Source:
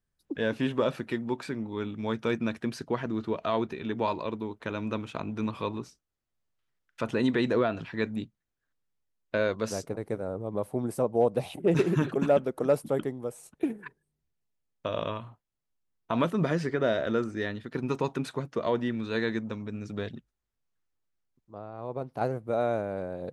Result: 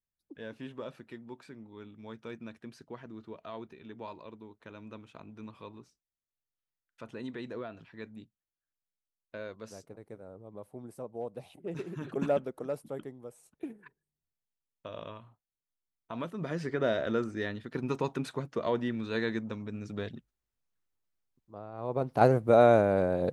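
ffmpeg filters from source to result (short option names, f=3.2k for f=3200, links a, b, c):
-af "volume=14.5dB,afade=t=in:st=12:d=0.21:silence=0.298538,afade=t=out:st=12.21:d=0.47:silence=0.446684,afade=t=in:st=16.39:d=0.42:silence=0.375837,afade=t=in:st=21.71:d=0.55:silence=0.316228"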